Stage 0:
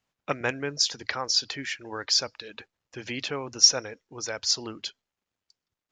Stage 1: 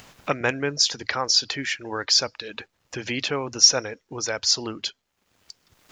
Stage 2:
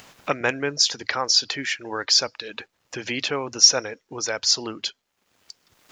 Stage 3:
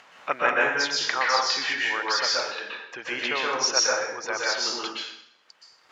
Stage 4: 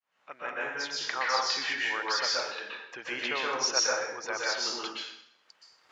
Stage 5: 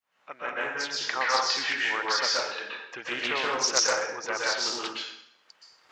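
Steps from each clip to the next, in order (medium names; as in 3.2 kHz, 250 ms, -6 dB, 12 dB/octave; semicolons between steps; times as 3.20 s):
in parallel at -1 dB: peak limiter -16 dBFS, peak gain reduction 11.5 dB; on the sum: upward compressor, threshold -29 dBFS
bass shelf 130 Hz -9 dB; trim +1 dB
band-pass filter 1.3 kHz, Q 0.84; plate-style reverb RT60 0.75 s, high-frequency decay 0.9×, pre-delay 110 ms, DRR -4.5 dB
fade-in on the opening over 1.47 s; trim -4.5 dB
loudspeaker Doppler distortion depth 0.2 ms; trim +3 dB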